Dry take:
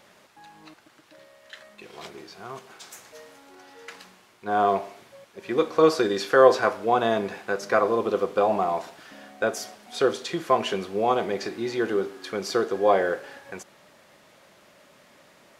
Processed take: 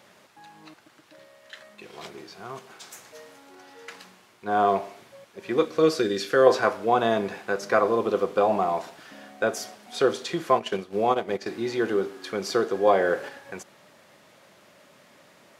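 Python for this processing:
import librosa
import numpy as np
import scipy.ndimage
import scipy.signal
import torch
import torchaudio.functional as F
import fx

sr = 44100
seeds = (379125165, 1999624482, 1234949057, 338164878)

y = fx.peak_eq(x, sr, hz=900.0, db=-11.5, octaves=0.92, at=(5.65, 6.47))
y = fx.transient(y, sr, attack_db=0, sustain_db=-12, at=(10.58, 11.46), fade=0.02)
y = scipy.signal.sosfilt(scipy.signal.butter(2, 88.0, 'highpass', fs=sr, output='sos'), y)
y = fx.low_shelf(y, sr, hz=120.0, db=4.0)
y = fx.band_squash(y, sr, depth_pct=70, at=(12.87, 13.29))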